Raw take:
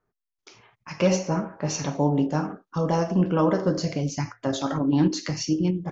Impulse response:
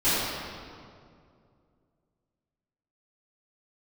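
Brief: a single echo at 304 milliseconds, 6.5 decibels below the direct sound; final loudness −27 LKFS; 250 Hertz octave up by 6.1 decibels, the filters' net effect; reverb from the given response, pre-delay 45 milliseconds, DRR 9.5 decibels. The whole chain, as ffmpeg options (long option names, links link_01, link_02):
-filter_complex "[0:a]equalizer=frequency=250:width_type=o:gain=8.5,aecho=1:1:304:0.473,asplit=2[link_01][link_02];[1:a]atrim=start_sample=2205,adelay=45[link_03];[link_02][link_03]afir=irnorm=-1:irlink=0,volume=-25.5dB[link_04];[link_01][link_04]amix=inputs=2:normalize=0,volume=-8dB"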